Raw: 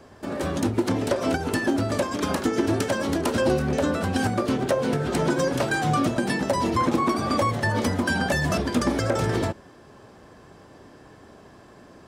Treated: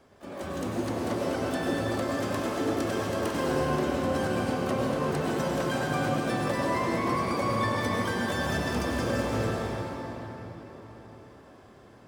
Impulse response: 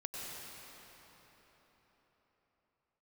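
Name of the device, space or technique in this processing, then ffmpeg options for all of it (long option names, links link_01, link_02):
shimmer-style reverb: -filter_complex "[0:a]asettb=1/sr,asplit=3[link_01][link_02][link_03];[link_01]atrim=end=3.174[link_04];[link_02]atrim=start=3.17:end=3.66,asetpts=PTS-STARTPTS,afade=type=in:duration=0.004:curve=qsin,afade=type=out:start_time=0.486:duration=0.004:curve=qsin,asplit=2[link_05][link_06];[link_06]adelay=46,volume=-7.5dB[link_07];[link_05][link_07]amix=inputs=2:normalize=0,atrim=end_sample=21609[link_08];[link_03]atrim=start=3.656[link_09];[link_04][link_08]acrossfade=duration=0.004:curve1=hsin:curve2=qsin[link_10];[link_10][link_09]acrossfade=duration=0.004:curve1=qsin:curve2=hsin,asplit=2[link_11][link_12];[link_12]asetrate=88200,aresample=44100,atempo=0.5,volume=-8dB[link_13];[link_11][link_13]amix=inputs=2:normalize=0[link_14];[1:a]atrim=start_sample=2205[link_15];[link_14][link_15]afir=irnorm=-1:irlink=0,volume=-6.5dB"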